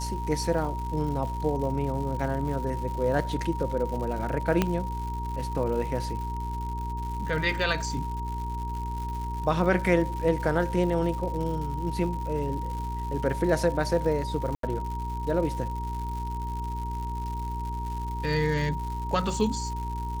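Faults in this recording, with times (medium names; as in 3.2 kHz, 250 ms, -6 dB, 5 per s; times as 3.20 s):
crackle 200 per s -35 dBFS
hum 60 Hz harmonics 7 -33 dBFS
whine 940 Hz -34 dBFS
4.62 s: pop -9 dBFS
14.55–14.63 s: dropout 83 ms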